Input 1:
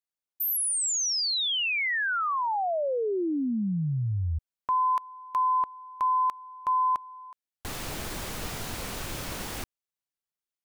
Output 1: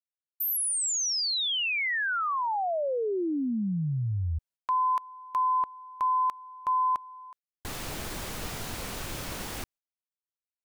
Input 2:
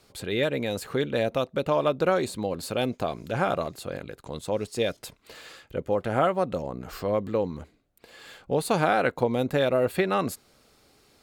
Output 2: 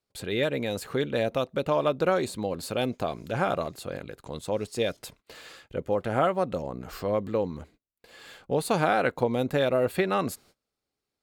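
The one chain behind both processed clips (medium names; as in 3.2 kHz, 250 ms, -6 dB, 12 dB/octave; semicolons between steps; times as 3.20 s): gate -53 dBFS, range -25 dB; trim -1 dB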